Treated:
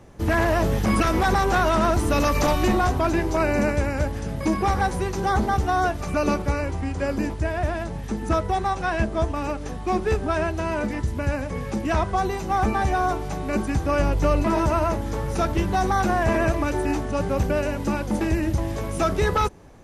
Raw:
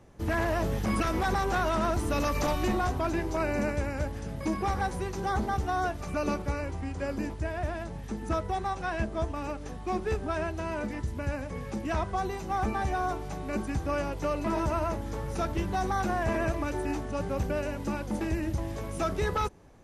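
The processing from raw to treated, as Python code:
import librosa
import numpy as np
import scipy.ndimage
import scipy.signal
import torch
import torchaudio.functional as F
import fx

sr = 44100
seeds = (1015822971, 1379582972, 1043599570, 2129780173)

y = fx.low_shelf(x, sr, hz=130.0, db=10.5, at=(13.99, 14.43))
y = F.gain(torch.from_numpy(y), 7.5).numpy()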